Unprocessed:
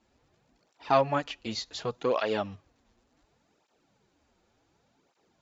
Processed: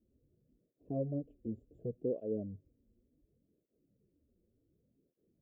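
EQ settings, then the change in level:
inverse Chebyshev band-stop filter 1,200–6,600 Hz, stop band 50 dB
phaser with its sweep stopped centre 2,100 Hz, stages 4
−2.0 dB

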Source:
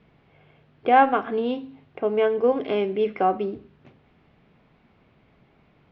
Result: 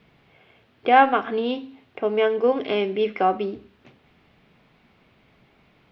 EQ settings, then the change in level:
high-shelf EQ 2,200 Hz +9.5 dB
mains-hum notches 50/100/150 Hz
0.0 dB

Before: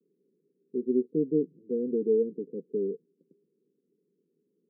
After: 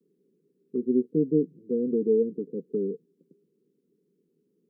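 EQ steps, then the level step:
low-shelf EQ 140 Hz +9.5 dB
dynamic equaliser 390 Hz, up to −3 dB, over −35 dBFS, Q 4.9
+2.0 dB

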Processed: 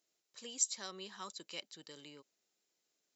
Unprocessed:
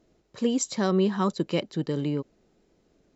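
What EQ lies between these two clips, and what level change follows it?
first difference
−1.5 dB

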